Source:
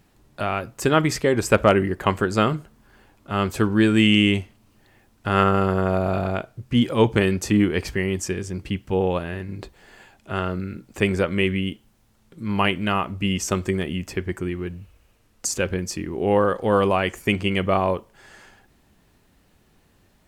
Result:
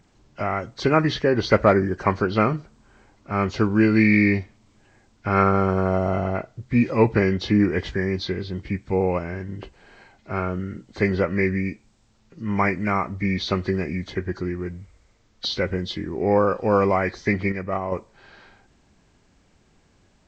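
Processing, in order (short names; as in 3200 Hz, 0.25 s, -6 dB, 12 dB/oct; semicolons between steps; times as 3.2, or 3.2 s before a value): nonlinear frequency compression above 1400 Hz 1.5:1; 17.52–17.92 gate -17 dBFS, range -7 dB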